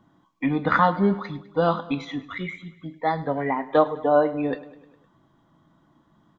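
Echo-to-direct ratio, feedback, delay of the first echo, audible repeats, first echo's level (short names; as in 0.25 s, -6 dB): -16.0 dB, 60%, 0.102 s, 4, -18.0 dB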